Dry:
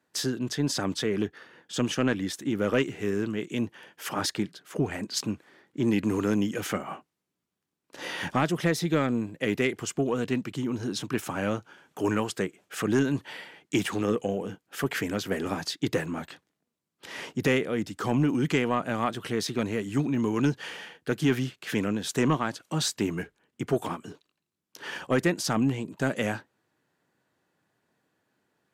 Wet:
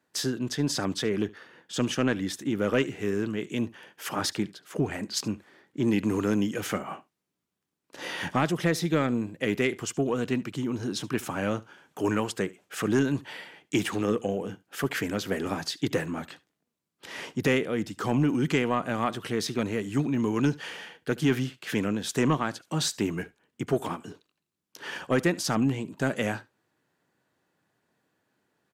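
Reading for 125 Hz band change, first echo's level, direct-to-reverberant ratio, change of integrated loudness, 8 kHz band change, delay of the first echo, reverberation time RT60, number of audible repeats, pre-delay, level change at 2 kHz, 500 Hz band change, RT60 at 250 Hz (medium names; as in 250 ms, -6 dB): 0.0 dB, -22.0 dB, no reverb, 0.0 dB, 0.0 dB, 73 ms, no reverb, 1, no reverb, 0.0 dB, 0.0 dB, no reverb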